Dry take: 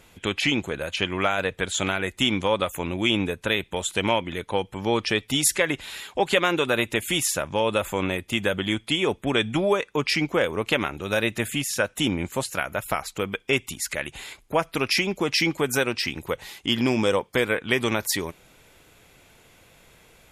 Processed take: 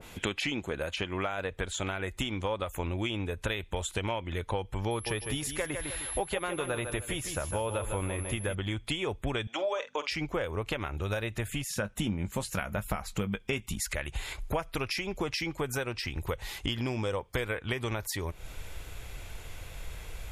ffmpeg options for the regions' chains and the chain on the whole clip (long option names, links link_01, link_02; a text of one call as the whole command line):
ffmpeg -i in.wav -filter_complex "[0:a]asettb=1/sr,asplit=3[link_01][link_02][link_03];[link_01]atrim=end=4.914[link_04];[link_02]atrim=start=4.91:end=8.55,asetpts=PTS-STARTPTS,afade=type=in:duration=0.004:curve=qsin,afade=type=out:start_time=3.636:duration=0.004:curve=qsin,highshelf=frequency=4400:gain=-6.5,aeval=exprs='val(0)+0.0178*sin(2*PI*11000*n/s)':channel_layout=same,aecho=1:1:153|306|459:0.355|0.106|0.0319,atrim=end_sample=160524[link_05];[link_03]atrim=start=8.546[link_06];[link_04][link_05]acrossfade=duration=0.004:curve1=hsin:curve2=qsin[link_07];[link_07][link_06]acrossfade=duration=0.004:curve1=qsin:curve2=hsin,asettb=1/sr,asplit=3[link_08][link_09][link_10];[link_08]atrim=end=9.474[link_11];[link_09]atrim=start=9.47:end=10.11,asetpts=PTS-STARTPTS,afade=type=in:duration=0.004:curve=qsin,afade=type=out:start_time=0.636:duration=0.004:curve=qsin,aeval=exprs='val(0)+0.02*(sin(2*PI*50*n/s)+sin(2*PI*2*50*n/s)/2+sin(2*PI*3*50*n/s)/3+sin(2*PI*4*50*n/s)/4+sin(2*PI*5*50*n/s)/5)':channel_layout=same,highpass=frequency=370:width=0.5412,highpass=frequency=370:width=1.3066,equalizer=frequency=400:width_type=q:width=4:gain=-8,equalizer=frequency=570:width_type=q:width=4:gain=5,equalizer=frequency=3200:width_type=q:width=4:gain=5,equalizer=frequency=6100:width_type=q:width=4:gain=6,lowpass=frequency=7400:width=0.5412,lowpass=frequency=7400:width=1.3066,asplit=2[link_12][link_13];[link_13]adelay=47,volume=-13dB[link_14];[link_12][link_14]amix=inputs=2:normalize=0,atrim=end_sample=28224[link_15];[link_10]atrim=start=10.106[link_16];[link_11][link_15]acrossfade=duration=0.004:curve1=hsin:curve2=qsin[link_17];[link_17][link_16]acrossfade=duration=0.004:curve1=qsin:curve2=hsin,asettb=1/sr,asplit=3[link_18][link_19][link_20];[link_18]atrim=end=11.654[link_21];[link_19]atrim=start=11.65:end=13.8,asetpts=PTS-STARTPTS,afade=type=in:duration=0.004:curve=qsin,afade=type=out:start_time=2.146:duration=0.004:curve=qsin,equalizer=frequency=200:width_type=o:width=0.5:gain=14.5,asplit=2[link_22][link_23];[link_23]adelay=19,volume=-13dB[link_24];[link_22][link_24]amix=inputs=2:normalize=0,atrim=end_sample=94815[link_25];[link_20]atrim=start=13.796[link_26];[link_21][link_25]acrossfade=duration=0.004:curve1=hsin:curve2=qsin[link_27];[link_27][link_26]acrossfade=duration=0.004:curve1=qsin:curve2=hsin,asubboost=boost=9:cutoff=69,acompressor=threshold=-36dB:ratio=5,adynamicequalizer=threshold=0.00316:dfrequency=1700:dqfactor=0.7:tfrequency=1700:tqfactor=0.7:attack=5:release=100:ratio=0.375:range=2.5:mode=cutabove:tftype=highshelf,volume=6dB" out.wav